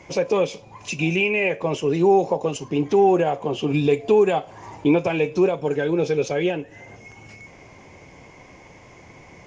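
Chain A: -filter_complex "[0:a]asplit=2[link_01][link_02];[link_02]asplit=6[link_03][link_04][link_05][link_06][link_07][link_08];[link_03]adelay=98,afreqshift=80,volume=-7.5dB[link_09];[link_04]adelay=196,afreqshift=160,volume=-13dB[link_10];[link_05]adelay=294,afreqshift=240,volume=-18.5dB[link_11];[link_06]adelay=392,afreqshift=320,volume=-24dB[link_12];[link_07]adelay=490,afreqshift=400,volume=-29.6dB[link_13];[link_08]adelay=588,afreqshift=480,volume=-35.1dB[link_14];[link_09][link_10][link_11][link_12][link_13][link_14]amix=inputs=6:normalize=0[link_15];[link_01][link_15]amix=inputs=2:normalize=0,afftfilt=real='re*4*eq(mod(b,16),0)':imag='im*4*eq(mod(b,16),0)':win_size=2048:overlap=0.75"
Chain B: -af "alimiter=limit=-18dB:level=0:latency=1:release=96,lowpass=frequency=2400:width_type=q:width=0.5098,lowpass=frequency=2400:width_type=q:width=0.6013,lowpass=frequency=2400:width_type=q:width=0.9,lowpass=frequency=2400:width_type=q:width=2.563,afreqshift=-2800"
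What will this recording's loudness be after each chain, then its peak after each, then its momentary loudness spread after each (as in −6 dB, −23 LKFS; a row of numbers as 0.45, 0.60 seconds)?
−23.5, −24.5 LKFS; −5.5, −16.0 dBFS; 13, 21 LU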